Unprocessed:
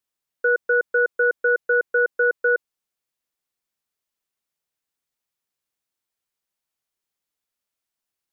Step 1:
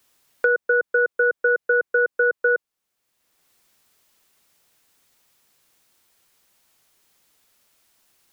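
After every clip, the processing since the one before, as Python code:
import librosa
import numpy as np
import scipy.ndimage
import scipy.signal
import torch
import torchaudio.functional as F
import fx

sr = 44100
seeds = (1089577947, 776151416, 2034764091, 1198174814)

y = fx.band_squash(x, sr, depth_pct=70)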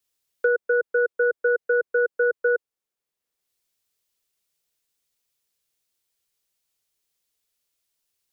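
y = fx.peak_eq(x, sr, hz=450.0, db=6.0, octaves=0.67)
y = fx.band_widen(y, sr, depth_pct=40)
y = y * librosa.db_to_amplitude(-5.5)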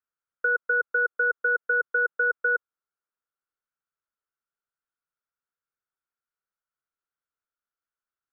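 y = fx.lowpass_res(x, sr, hz=1400.0, q=7.0)
y = fx.level_steps(y, sr, step_db=19)
y = y * librosa.db_to_amplitude(-3.5)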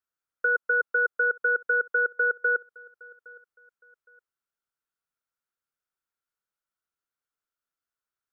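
y = fx.echo_feedback(x, sr, ms=814, feedback_pct=28, wet_db=-23.0)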